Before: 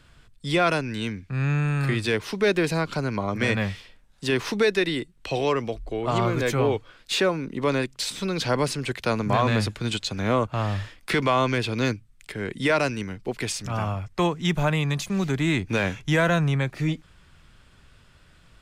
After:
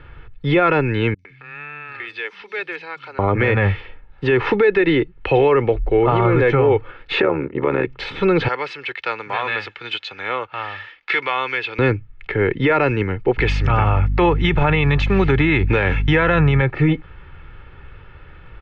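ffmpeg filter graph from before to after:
ffmpeg -i in.wav -filter_complex "[0:a]asettb=1/sr,asplit=3[link_01][link_02][link_03];[link_01]atrim=end=1.144[link_04];[link_02]atrim=start=1.14:end=3.19,asetpts=PTS-STARTPTS,afade=type=in:duration=0.004:curve=qsin,afade=type=out:start_time=2.046:duration=0.004:curve=qsin,aderivative,acompressor=mode=upward:threshold=-44dB:ratio=2.5:attack=3.2:release=140:knee=2.83:detection=peak,acrossover=split=200|5800[link_05][link_06][link_07];[link_07]adelay=50[link_08];[link_06]adelay=110[link_09];[link_05][link_09][link_08]amix=inputs=3:normalize=0,atrim=end_sample=90405[link_10];[link_03]atrim=start=3.186[link_11];[link_04][link_10]acrossfade=duration=0.004:curve1=hsin:curve2=qsin[link_12];[link_12][link_11]acrossfade=duration=0.004:curve1=qsin:curve2=hsin,asettb=1/sr,asplit=3[link_13][link_14][link_15];[link_13]atrim=end=7.224[link_16];[link_14]atrim=start=7.22:end=7.87,asetpts=PTS-STARTPTS,afade=type=in:duration=0.004:curve=qsin,afade=type=out:start_time=0.646:duration=0.004:curve=qsin,tremolo=f=75:d=0.919,highpass=110,lowpass=3000[link_17];[link_15]atrim=start=7.866[link_18];[link_16][link_17]acrossfade=duration=0.004:curve1=hsin:curve2=qsin[link_19];[link_19][link_18]acrossfade=duration=0.004:curve1=qsin:curve2=hsin,asettb=1/sr,asplit=3[link_20][link_21][link_22];[link_20]atrim=end=8.484[link_23];[link_21]atrim=start=8.48:end=11.79,asetpts=PTS-STARTPTS,afade=type=in:duration=0.004:curve=qsin,afade=type=out:start_time=3.306:duration=0.004:curve=qsin,lowpass=7200,aderivative,acontrast=61[link_24];[link_22]atrim=start=11.786[link_25];[link_23][link_24]acrossfade=duration=0.004:curve1=hsin:curve2=qsin[link_26];[link_26][link_25]acrossfade=duration=0.004:curve1=qsin:curve2=hsin,asettb=1/sr,asplit=3[link_27][link_28][link_29];[link_27]atrim=end=13.384[link_30];[link_28]atrim=start=13.38:end=16.62,asetpts=PTS-STARTPTS,afade=type=in:duration=0.004:curve=qsin,afade=type=out:start_time=3.236:duration=0.004:curve=qsin,highshelf=frequency=2600:gain=10,aeval=exprs='val(0)+0.0251*(sin(2*PI*50*n/s)+sin(2*PI*2*50*n/s)/2+sin(2*PI*3*50*n/s)/3+sin(2*PI*4*50*n/s)/4+sin(2*PI*5*50*n/s)/5)':channel_layout=same[link_31];[link_29]atrim=start=16.616[link_32];[link_30][link_31]acrossfade=duration=0.004:curve1=hsin:curve2=qsin[link_33];[link_33][link_32]acrossfade=duration=0.004:curve1=qsin:curve2=hsin,lowpass=frequency=2500:width=0.5412,lowpass=frequency=2500:width=1.3066,aecho=1:1:2.3:0.57,alimiter=level_in=18dB:limit=-1dB:release=50:level=0:latency=1,volume=-6dB" out.wav

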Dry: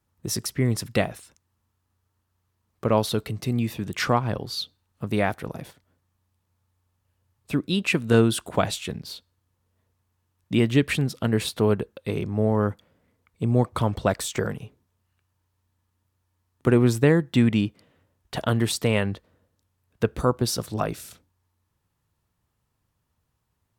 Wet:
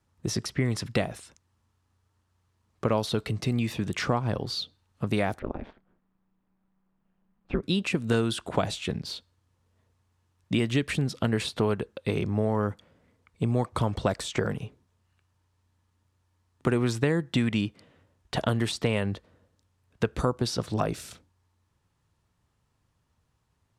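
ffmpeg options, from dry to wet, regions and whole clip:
ffmpeg -i in.wav -filter_complex "[0:a]asettb=1/sr,asplit=3[link_01][link_02][link_03];[link_01]atrim=end=5.394[link_04];[link_02]atrim=start=5.39:end=7.63,asetpts=PTS-STARTPTS,afade=type=in:duration=0.004:curve=qsin,afade=type=out:start_time=2.236:duration=0.004:curve=qsin,lowpass=2900,aemphasis=mode=reproduction:type=75fm,aeval=exprs='val(0)*sin(2*PI*99*n/s)':channel_layout=same[link_05];[link_03]atrim=start=7.626[link_06];[link_04][link_05]acrossfade=duration=0.004:curve1=hsin:curve2=qsin[link_07];[link_07][link_06]acrossfade=duration=0.004:curve1=qsin:curve2=hsin,lowpass=8800,acrossover=split=830|4900[link_08][link_09][link_10];[link_08]acompressor=threshold=-26dB:ratio=4[link_11];[link_09]acompressor=threshold=-35dB:ratio=4[link_12];[link_10]acompressor=threshold=-44dB:ratio=4[link_13];[link_11][link_12][link_13]amix=inputs=3:normalize=0,volume=2.5dB" out.wav

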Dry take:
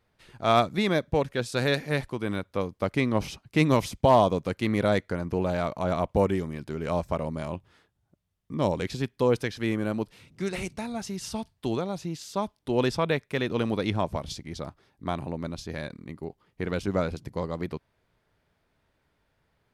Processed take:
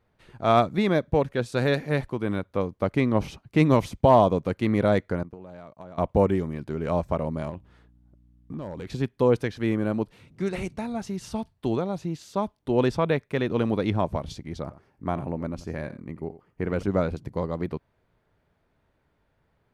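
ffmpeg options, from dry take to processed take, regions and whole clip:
ffmpeg -i in.wav -filter_complex "[0:a]asettb=1/sr,asplit=3[link_01][link_02][link_03];[link_01]atrim=end=5.234[link_04];[link_02]atrim=start=5.23:end=5.98,asetpts=PTS-STARTPTS,afade=type=in:duration=0.004:curve=qsin,afade=type=out:start_time=0.746:duration=0.004:curve=qsin,highpass=90,agate=range=-33dB:threshold=-29dB:ratio=3:release=100:detection=peak,acompressor=threshold=-41dB:ratio=8:attack=3.2:release=140:knee=1:detection=peak[link_05];[link_03]atrim=start=5.976[link_06];[link_04][link_05]acrossfade=duration=0.004:curve1=hsin:curve2=qsin[link_07];[link_07][link_06]acrossfade=duration=0.004:curve1=qsin:curve2=hsin,asettb=1/sr,asplit=3[link_08][link_09][link_10];[link_08]atrim=end=7.494[link_11];[link_09]atrim=start=7.49:end=8.87,asetpts=PTS-STARTPTS,afade=type=in:duration=0.004:curve=qsin,afade=type=out:start_time=1.376:duration=0.004:curve=qsin,acompressor=threshold=-34dB:ratio=4:attack=3.2:release=140:knee=1:detection=peak,aeval=exprs='val(0)+0.00112*(sin(2*PI*60*n/s)+sin(2*PI*2*60*n/s)/2+sin(2*PI*3*60*n/s)/3+sin(2*PI*4*60*n/s)/4+sin(2*PI*5*60*n/s)/5)':channel_layout=same,volume=31.5dB,asoftclip=hard,volume=-31.5dB[link_12];[link_10]atrim=start=8.866[link_13];[link_11][link_12]acrossfade=duration=0.004:curve1=hsin:curve2=qsin[link_14];[link_14][link_13]acrossfade=duration=0.004:curve1=qsin:curve2=hsin,asettb=1/sr,asplit=3[link_15][link_16][link_17];[link_15]atrim=end=14.624[link_18];[link_16]atrim=start=14.62:end=16.83,asetpts=PTS-STARTPTS,afade=type=in:duration=0.004:curve=qsin,afade=type=out:start_time=2.206:duration=0.004:curve=qsin,equalizer=frequency=3700:width_type=o:width=0.34:gain=-11.5,aecho=1:1:88:0.178,atrim=end_sample=97461[link_19];[link_17]atrim=start=16.826[link_20];[link_18][link_19]acrossfade=duration=0.004:curve1=hsin:curve2=qsin[link_21];[link_21][link_20]acrossfade=duration=0.004:curve1=qsin:curve2=hsin,highshelf=frequency=2200:gain=-9.5,bandreject=frequency=5100:width=24,volume=3dB" out.wav

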